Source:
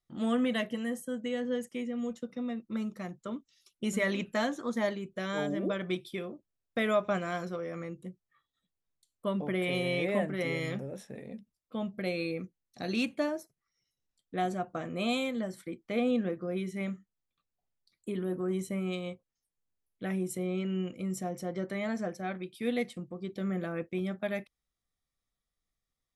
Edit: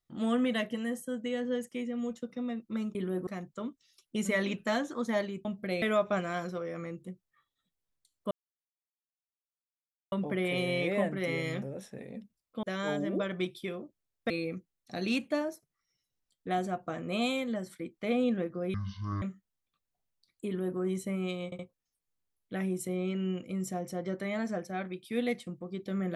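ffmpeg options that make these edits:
-filter_complex "[0:a]asplit=12[s0][s1][s2][s3][s4][s5][s6][s7][s8][s9][s10][s11];[s0]atrim=end=2.952[s12];[s1]atrim=start=18.098:end=18.422[s13];[s2]atrim=start=2.948:end=5.132[s14];[s3]atrim=start=11.798:end=12.172[s15];[s4]atrim=start=6.798:end=9.29,asetpts=PTS-STARTPTS,afade=t=out:st=2.488:d=0.004:c=hsin,apad=pad_dur=1.81[s16];[s5]atrim=start=9.29:end=11.802,asetpts=PTS-STARTPTS,afade=t=in:d=0.004:c=hsin[s17];[s6]atrim=start=5.128:end=6.802[s18];[s7]atrim=start=12.168:end=16.614[s19];[s8]atrim=start=16.61:end=16.86,asetpts=PTS-STARTPTS,asetrate=22932,aresample=44100[s20];[s9]atrim=start=16.856:end=19.162[s21];[s10]atrim=start=19.088:end=19.162[s22];[s11]atrim=start=19.088[s23];[s12][s13]acrossfade=d=0.004:c1=hsin:c2=hsin[s24];[s24][s14]acrossfade=d=0.004:c1=hsin:c2=hsin[s25];[s25][s15]acrossfade=d=0.004:c1=hsin:c2=hsin[s26];[s16][s17]concat=n=2:v=0:a=1[s27];[s26][s27]acrossfade=d=0.004:c1=hsin:c2=hsin[s28];[s28][s18]acrossfade=d=0.004:c1=hsin:c2=hsin[s29];[s29][s19]acrossfade=d=0.004:c1=hsin:c2=hsin[s30];[s30][s20]acrossfade=d=0.004:c1=hsin:c2=hsin[s31];[s31][s21]acrossfade=d=0.004:c1=hsin:c2=hsin[s32];[s32][s22]acrossfade=d=0.004:c1=hsin:c2=hsin[s33];[s33][s23]acrossfade=d=0.004:c1=hsin:c2=hsin"

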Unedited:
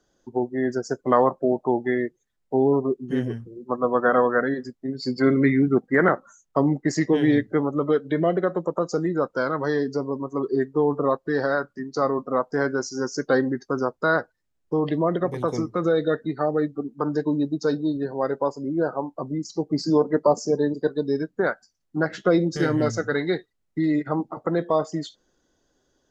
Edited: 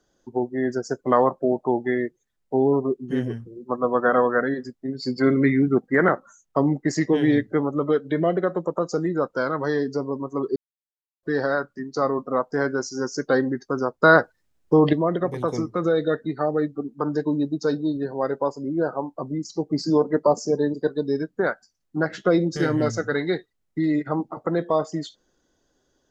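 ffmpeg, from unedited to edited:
-filter_complex "[0:a]asplit=5[s0][s1][s2][s3][s4];[s0]atrim=end=10.56,asetpts=PTS-STARTPTS,afade=t=out:st=10.556:d=0.004:c=hsin[s5];[s1]atrim=start=10.56:end=11.23,asetpts=PTS-STARTPTS,volume=0[s6];[s2]atrim=start=11.23:end=14.032,asetpts=PTS-STARTPTS,afade=t=in:d=0.004:c=hsin[s7];[s3]atrim=start=14.028:end=14.932,asetpts=PTS-STARTPTS,volume=2.24[s8];[s4]atrim=start=14.928[s9];[s5][s6][s7]concat=n=3:v=0:a=1[s10];[s10][s8]acrossfade=d=0.004:c1=hsin:c2=hsin[s11];[s11][s9]acrossfade=d=0.004:c1=hsin:c2=hsin"

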